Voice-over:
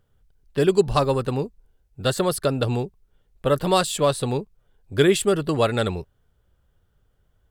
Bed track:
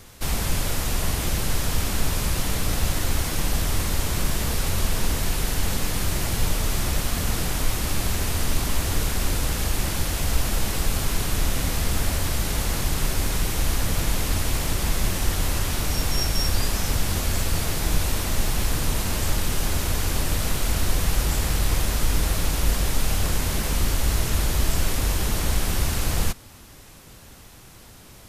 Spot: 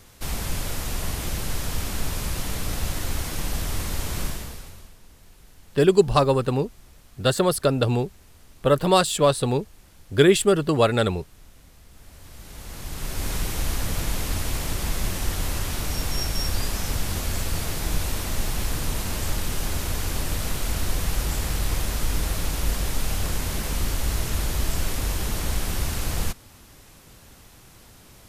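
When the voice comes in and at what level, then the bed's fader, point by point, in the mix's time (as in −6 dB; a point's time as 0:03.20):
5.20 s, +1.5 dB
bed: 0:04.25 −4 dB
0:04.98 −27.5 dB
0:11.88 −27.5 dB
0:13.30 −3 dB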